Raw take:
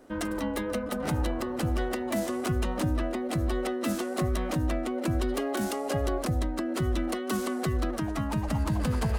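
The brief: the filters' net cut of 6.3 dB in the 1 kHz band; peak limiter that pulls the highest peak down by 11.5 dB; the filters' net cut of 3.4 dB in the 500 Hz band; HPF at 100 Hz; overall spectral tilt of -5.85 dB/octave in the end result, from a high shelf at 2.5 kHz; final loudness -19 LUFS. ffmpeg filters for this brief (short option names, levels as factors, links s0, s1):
-af "highpass=100,equalizer=f=500:t=o:g=-3,equalizer=f=1000:t=o:g=-7,highshelf=f=2500:g=-3,volume=9.44,alimiter=limit=0.282:level=0:latency=1"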